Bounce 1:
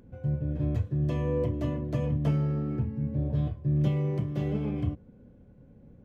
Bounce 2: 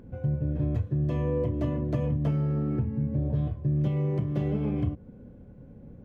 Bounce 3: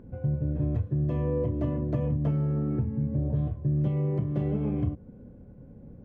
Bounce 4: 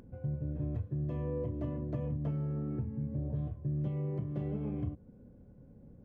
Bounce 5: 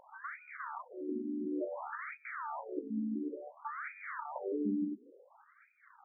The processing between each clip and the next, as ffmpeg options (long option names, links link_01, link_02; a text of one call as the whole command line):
ffmpeg -i in.wav -af "highshelf=frequency=3000:gain=-8,acompressor=threshold=-31dB:ratio=3,volume=6dB" out.wav
ffmpeg -i in.wav -af "highshelf=frequency=2500:gain=-11" out.wav
ffmpeg -i in.wav -af "acompressor=mode=upward:threshold=-44dB:ratio=2.5,volume=-8dB" out.wav
ffmpeg -i in.wav -af "acrusher=samples=29:mix=1:aa=0.000001:lfo=1:lforange=29:lforate=1.7,afftfilt=real='re*between(b*sr/1024,260*pow(1800/260,0.5+0.5*sin(2*PI*0.57*pts/sr))/1.41,260*pow(1800/260,0.5+0.5*sin(2*PI*0.57*pts/sr))*1.41)':imag='im*between(b*sr/1024,260*pow(1800/260,0.5+0.5*sin(2*PI*0.57*pts/sr))/1.41,260*pow(1800/260,0.5+0.5*sin(2*PI*0.57*pts/sr))*1.41)':win_size=1024:overlap=0.75,volume=8dB" out.wav